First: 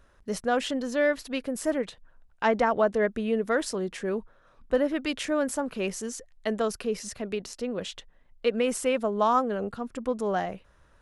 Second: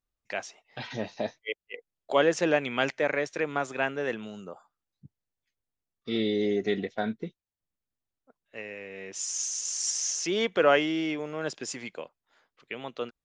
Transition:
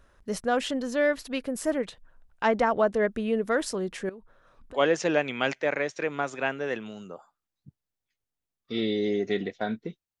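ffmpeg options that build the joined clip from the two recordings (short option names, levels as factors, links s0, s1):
-filter_complex "[0:a]asettb=1/sr,asplit=3[s0][s1][s2];[s0]atrim=end=4.094[s3];[s1]atrim=start=4.09:end=4.81,asetpts=PTS-STARTPTS,afade=t=in:d=0.004:c=qsin,afade=t=out:st=0.716:d=0.004:c=qsin,acompressor=threshold=0.00447:ratio=3:attack=3.2:release=140:knee=1:detection=peak[s4];[s2]atrim=start=4.806[s5];[s3][s4]acrossfade=d=0.004:c1=hsin:c2=qsin[s6];[s6][s5]acrossfade=d=0.004:c1=qsin:c2=hsin,apad=whole_dur=10.2,atrim=end=10.2,atrim=end=4.81,asetpts=PTS-STARTPTS[s7];[1:a]atrim=start=2.1:end=7.57,asetpts=PTS-STARTPTS[s8];[s7][s8]acrossfade=d=0.08:c1=tri:c2=tri"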